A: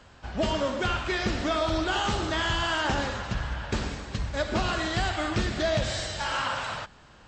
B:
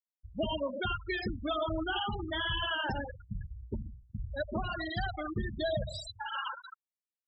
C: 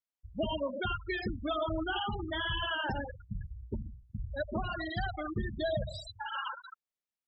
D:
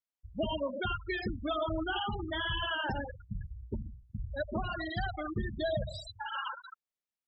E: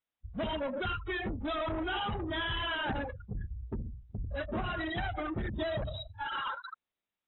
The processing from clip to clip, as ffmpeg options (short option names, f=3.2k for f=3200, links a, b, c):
-af "aemphasis=mode=production:type=75kf,afftfilt=real='re*gte(hypot(re,im),0.141)':imag='im*gte(hypot(re,im),0.141)':win_size=1024:overlap=0.75,bandreject=f=60:t=h:w=6,bandreject=f=120:t=h:w=6,bandreject=f=180:t=h:w=6,volume=-5.5dB"
-af "highshelf=f=6.7k:g=-10.5"
-af anull
-af "aresample=16000,asoftclip=type=tanh:threshold=-36dB,aresample=44100,volume=5dB" -ar 24000 -c:a aac -b:a 16k